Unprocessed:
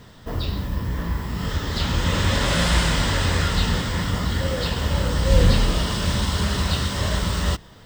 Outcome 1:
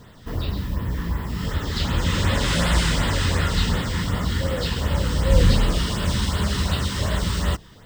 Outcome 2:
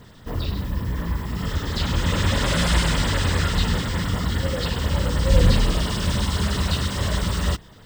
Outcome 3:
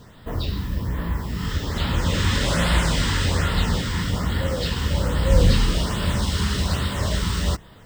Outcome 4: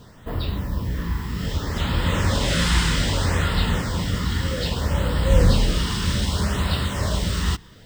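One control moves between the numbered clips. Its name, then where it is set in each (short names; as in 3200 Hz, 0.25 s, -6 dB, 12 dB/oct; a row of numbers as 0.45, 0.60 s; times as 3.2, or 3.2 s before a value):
LFO notch, rate: 2.7, 9.9, 1.2, 0.63 Hz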